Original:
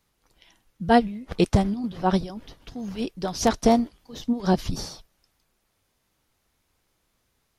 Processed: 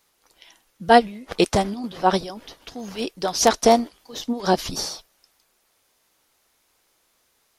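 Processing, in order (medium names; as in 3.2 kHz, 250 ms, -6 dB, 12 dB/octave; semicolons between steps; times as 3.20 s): tone controls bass -14 dB, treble +3 dB; trim +6 dB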